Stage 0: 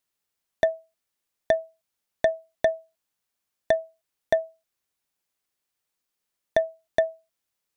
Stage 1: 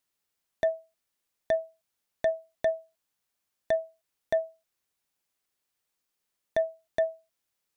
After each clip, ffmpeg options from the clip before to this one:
-af "alimiter=limit=0.133:level=0:latency=1:release=29"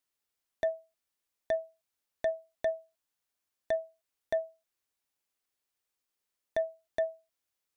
-af "equalizer=f=160:w=2.7:g=-6.5,volume=0.631"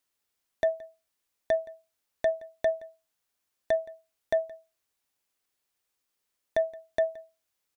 -af "aecho=1:1:171:0.0794,volume=1.68"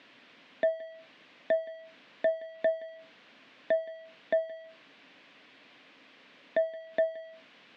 -af "aeval=exprs='val(0)+0.5*0.00841*sgn(val(0))':c=same,highpass=f=160:w=0.5412,highpass=f=160:w=1.3066,equalizer=f=270:t=q:w=4:g=6,equalizer=f=380:t=q:w=4:g=-5,equalizer=f=840:t=q:w=4:g=-7,equalizer=f=1300:t=q:w=4:g=-5,lowpass=f=3200:w=0.5412,lowpass=f=3200:w=1.3066"

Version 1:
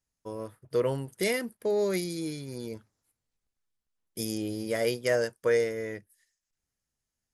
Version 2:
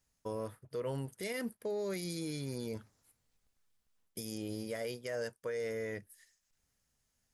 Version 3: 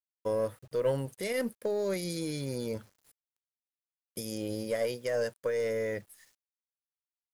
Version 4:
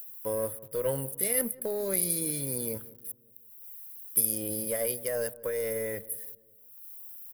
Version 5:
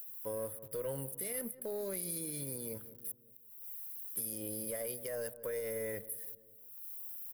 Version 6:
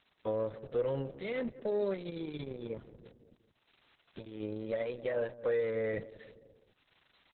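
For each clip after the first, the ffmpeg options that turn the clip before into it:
-af "equalizer=f=340:t=o:w=0.21:g=-5,areverse,acompressor=threshold=0.0126:ratio=6,areverse,alimiter=level_in=3.98:limit=0.0631:level=0:latency=1:release=152,volume=0.251,volume=2.11"
-af "equalizer=f=540:w=5.6:g=8.5,acrusher=bits=10:mix=0:aa=0.000001,aeval=exprs='0.0668*(cos(1*acos(clip(val(0)/0.0668,-1,1)))-cos(1*PI/2))+0.00531*(cos(3*acos(clip(val(0)/0.0668,-1,1)))-cos(3*PI/2))+0.00119*(cos(4*acos(clip(val(0)/0.0668,-1,1)))-cos(4*PI/2))':c=same,volume=2"
-filter_complex "[0:a]acompressor=mode=upward:threshold=0.00562:ratio=2.5,aexciter=amount=13.8:drive=7.4:freq=9800,asplit=2[s0][s1];[s1]adelay=183,lowpass=f=860:p=1,volume=0.126,asplit=2[s2][s3];[s3]adelay=183,lowpass=f=860:p=1,volume=0.52,asplit=2[s4][s5];[s5]adelay=183,lowpass=f=860:p=1,volume=0.52,asplit=2[s6][s7];[s7]adelay=183,lowpass=f=860:p=1,volume=0.52[s8];[s0][s2][s4][s6][s8]amix=inputs=5:normalize=0,volume=0.841"
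-filter_complex "[0:a]acrossover=split=490[s0][s1];[s1]asoftclip=type=tanh:threshold=0.0841[s2];[s0][s2]amix=inputs=2:normalize=0,alimiter=level_in=2:limit=0.0631:level=0:latency=1:release=341,volume=0.501"
-af "volume=2.51" -ar 48000 -c:a libopus -b:a 6k

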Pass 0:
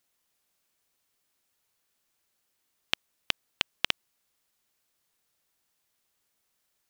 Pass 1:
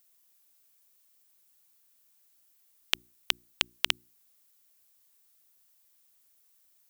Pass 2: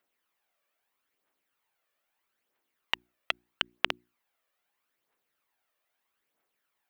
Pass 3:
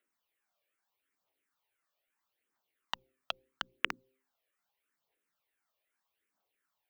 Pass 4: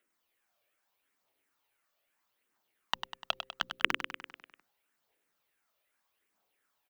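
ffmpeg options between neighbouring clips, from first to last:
-af "aemphasis=mode=production:type=50kf,bandreject=f=60:t=h:w=6,bandreject=f=120:t=h:w=6,bandreject=f=180:t=h:w=6,bandreject=f=240:t=h:w=6,bandreject=f=300:t=h:w=6,bandreject=f=360:t=h:w=6,volume=0.794"
-filter_complex "[0:a]acrossover=split=250 2700:gain=0.178 1 0.0794[s0][s1][s2];[s0][s1][s2]amix=inputs=3:normalize=0,aphaser=in_gain=1:out_gain=1:delay=1.8:decay=0.49:speed=0.78:type=triangular,volume=1.33"
-filter_complex "[0:a]bandreject=f=131.5:t=h:w=4,bandreject=f=263:t=h:w=4,bandreject=f=394.5:t=h:w=4,bandreject=f=526:t=h:w=4,asplit=2[s0][s1];[s1]afreqshift=-2.9[s2];[s0][s2]amix=inputs=2:normalize=1,volume=0.841"
-af "aecho=1:1:99|198|297|396|495|594|693:0.376|0.222|0.131|0.0772|0.0455|0.0269|0.0159,volume=1.68"

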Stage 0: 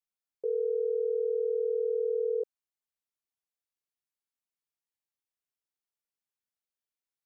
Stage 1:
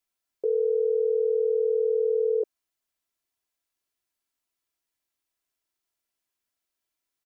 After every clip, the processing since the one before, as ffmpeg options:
-af "aecho=1:1:3:0.41,volume=2.37"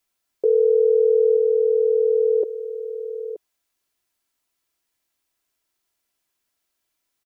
-af "aecho=1:1:926:0.211,volume=2.37"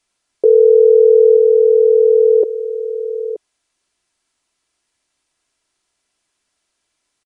-af "aresample=22050,aresample=44100,volume=2.51"

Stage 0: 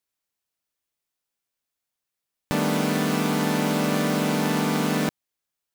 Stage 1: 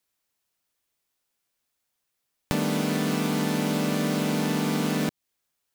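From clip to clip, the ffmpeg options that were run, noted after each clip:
-filter_complex "[0:a]acrossover=split=520|2200|5800[s0][s1][s2][s3];[s0]acompressor=threshold=0.0316:ratio=4[s4];[s1]acompressor=threshold=0.00794:ratio=4[s5];[s2]acompressor=threshold=0.00708:ratio=4[s6];[s3]acompressor=threshold=0.00708:ratio=4[s7];[s4][s5][s6][s7]amix=inputs=4:normalize=0,volume=1.88"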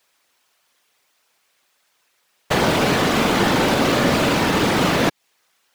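-filter_complex "[0:a]asplit=2[s0][s1];[s1]highpass=f=720:p=1,volume=17.8,asoftclip=type=tanh:threshold=0.299[s2];[s0][s2]amix=inputs=2:normalize=0,lowpass=f=3200:p=1,volume=0.501,afftfilt=real='hypot(re,im)*cos(2*PI*random(0))':imag='hypot(re,im)*sin(2*PI*random(1))':win_size=512:overlap=0.75,volume=2.37"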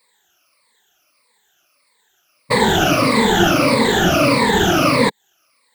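-af "afftfilt=real='re*pow(10,21/40*sin(2*PI*(0.96*log(max(b,1)*sr/1024/100)/log(2)-(-1.6)*(pts-256)/sr)))':imag='im*pow(10,21/40*sin(2*PI*(0.96*log(max(b,1)*sr/1024/100)/log(2)-(-1.6)*(pts-256)/sr)))':win_size=1024:overlap=0.75,volume=0.841"

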